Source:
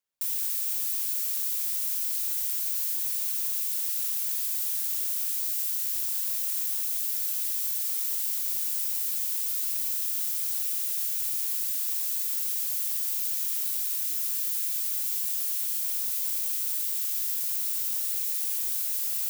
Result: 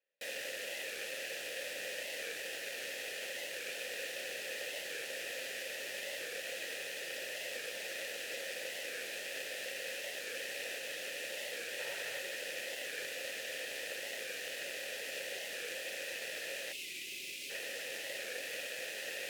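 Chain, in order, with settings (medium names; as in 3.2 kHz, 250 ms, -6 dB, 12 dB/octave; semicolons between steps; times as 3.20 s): square wave that keeps the level; 11.79–12.20 s: graphic EQ 125/250/1000 Hz +7/-6/+9 dB; 16.72–17.50 s: time-frequency box 430–2000 Hz -20 dB; vowel filter e; warped record 45 rpm, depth 100 cents; trim +12.5 dB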